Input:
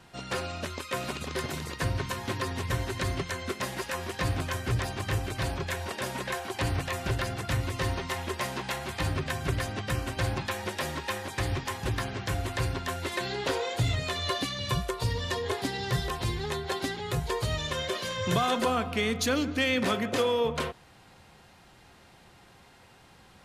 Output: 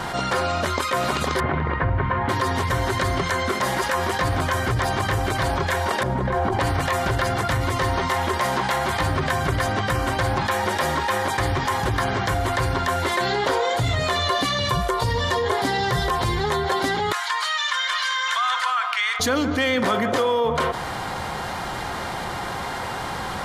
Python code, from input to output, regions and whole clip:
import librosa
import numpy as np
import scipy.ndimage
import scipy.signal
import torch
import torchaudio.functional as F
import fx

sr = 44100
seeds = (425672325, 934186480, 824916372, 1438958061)

y = fx.chain(x, sr, fx.lowpass(hz=2400.0, slope=24),
    fx.low_shelf(hz=110.0, db=9.0), at=(1.4, 2.29))
y = fx.chain(y, sr, fx.tilt_eq(slope=-4.5),
    fx.over_compress(threshold_db=-32.0, ratio=-1.0), at=(6.03, 6.6))
y = fx.chain(y, sr, fx.highpass(hz=1200.0, slope=24),
    fx.air_absorb(metres=55.0), at=(17.12, 19.2))
y = fx.peak_eq(y, sr, hz=990.0, db=8.0, octaves=1.9)
y = fx.notch(y, sr, hz=2600.0, q=8.3)
y = fx.env_flatten(y, sr, amount_pct=70)